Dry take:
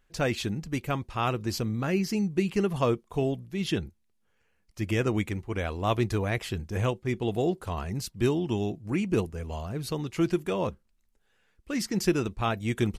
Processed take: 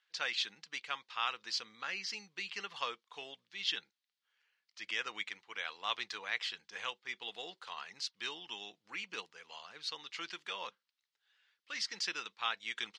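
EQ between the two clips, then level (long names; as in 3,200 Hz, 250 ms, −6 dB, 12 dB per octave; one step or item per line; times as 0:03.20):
loudspeaker in its box 210–4,200 Hz, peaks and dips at 260 Hz −6 dB, 370 Hz −9 dB, 640 Hz −9 dB, 2,500 Hz −4 dB
first difference
low-shelf EQ 310 Hz −11 dB
+10.5 dB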